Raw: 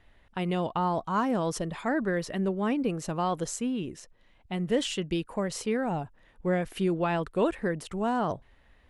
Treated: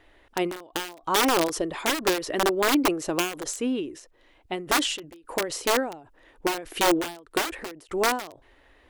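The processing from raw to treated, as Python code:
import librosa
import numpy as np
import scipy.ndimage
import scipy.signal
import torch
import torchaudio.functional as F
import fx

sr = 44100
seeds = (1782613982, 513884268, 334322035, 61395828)

y = (np.mod(10.0 ** (21.5 / 20.0) * x + 1.0, 2.0) - 1.0) / 10.0 ** (21.5 / 20.0)
y = fx.low_shelf_res(y, sr, hz=250.0, db=-7.0, q=3.0)
y = fx.end_taper(y, sr, db_per_s=110.0)
y = F.gain(torch.from_numpy(y), 6.0).numpy()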